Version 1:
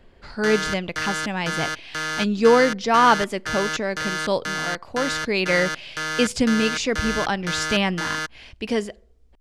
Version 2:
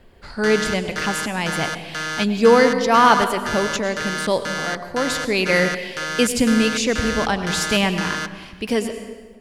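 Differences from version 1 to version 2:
speech: remove low-pass 6.9 kHz 12 dB/octave; reverb: on, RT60 1.5 s

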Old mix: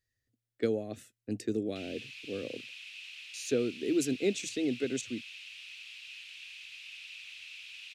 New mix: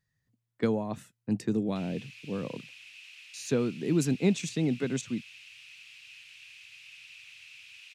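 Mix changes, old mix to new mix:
speech: remove static phaser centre 400 Hz, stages 4; background: add peaking EQ 3.6 kHz -6 dB 0.89 oct

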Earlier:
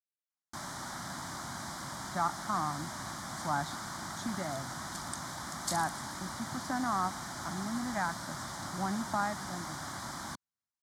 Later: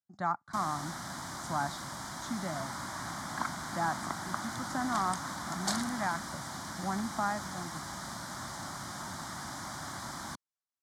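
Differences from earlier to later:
speech: entry -1.95 s; second sound: remove differentiator

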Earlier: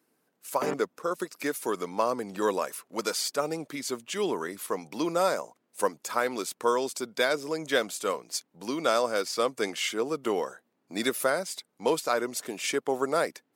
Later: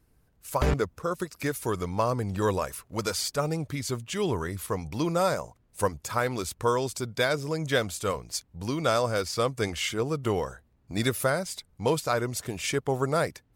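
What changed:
background: remove distance through air 430 m; master: remove high-pass 230 Hz 24 dB/octave

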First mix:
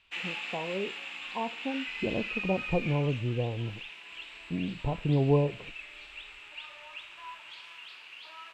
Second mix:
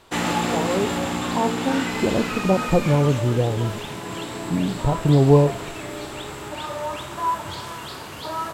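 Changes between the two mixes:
speech +10.0 dB; background: remove band-pass filter 2.6 kHz, Q 5.6

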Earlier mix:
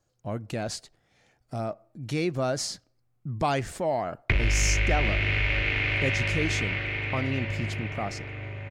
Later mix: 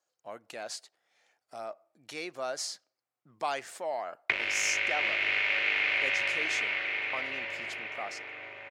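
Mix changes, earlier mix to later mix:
speech -4.0 dB; master: add high-pass 620 Hz 12 dB/octave

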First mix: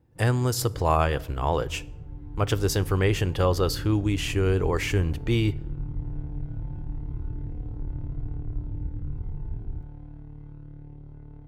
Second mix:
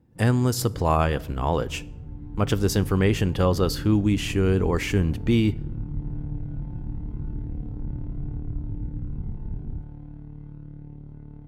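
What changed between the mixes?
second sound: remove steep low-pass 520 Hz 96 dB/octave; master: add peaking EQ 210 Hz +11.5 dB 0.61 oct

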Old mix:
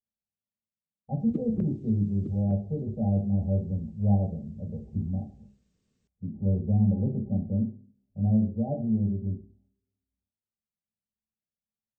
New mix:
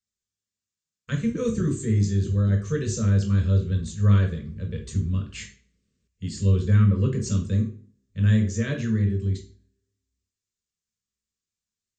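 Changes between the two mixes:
speech: remove rippled Chebyshev low-pass 830 Hz, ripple 9 dB; master: add Butterworth band-stop 800 Hz, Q 1.4

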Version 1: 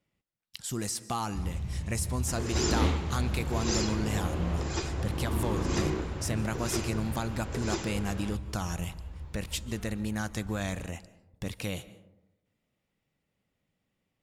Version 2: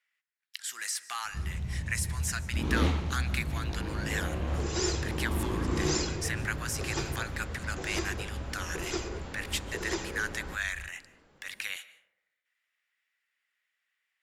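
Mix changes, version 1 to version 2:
speech: add resonant high-pass 1.7 kHz, resonance Q 3.3; second sound: entry +2.20 s

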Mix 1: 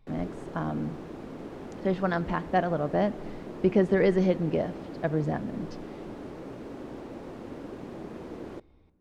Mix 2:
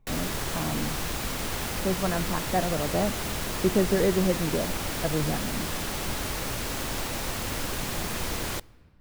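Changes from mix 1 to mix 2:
speech: add distance through air 430 m; background: remove band-pass filter 330 Hz, Q 1.5

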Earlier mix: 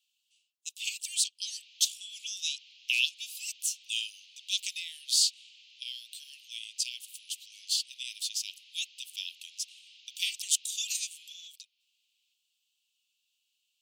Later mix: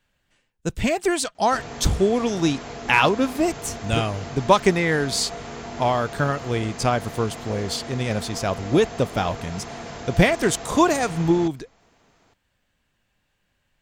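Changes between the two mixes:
background: remove distance through air 300 m; master: remove steep high-pass 2.7 kHz 72 dB/octave

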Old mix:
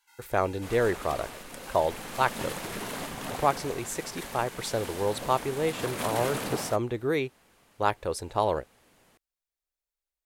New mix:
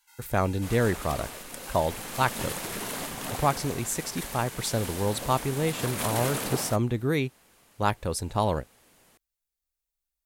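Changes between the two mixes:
speech: add resonant low shelf 290 Hz +7 dB, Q 1.5; master: add treble shelf 5.3 kHz +7.5 dB

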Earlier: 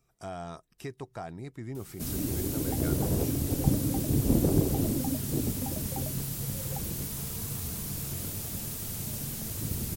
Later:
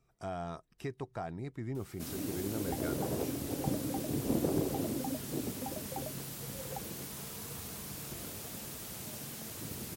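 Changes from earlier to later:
first sound: add high-pass 460 Hz 6 dB/octave; master: add treble shelf 4.9 kHz -9 dB

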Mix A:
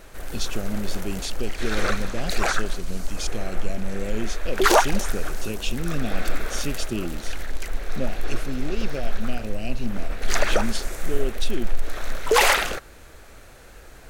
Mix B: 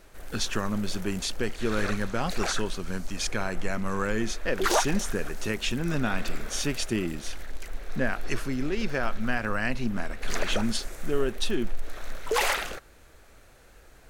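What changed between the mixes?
speech: remove Chebyshev band-stop 700–2600 Hz, order 3; background -8.0 dB

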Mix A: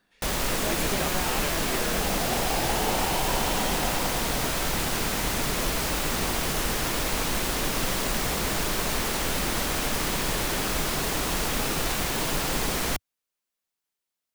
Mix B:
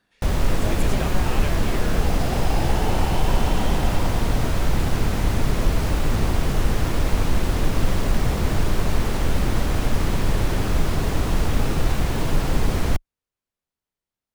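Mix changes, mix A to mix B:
first sound: add tilt EQ -2.5 dB/octave; master: add peaking EQ 94 Hz +10.5 dB 0.49 oct

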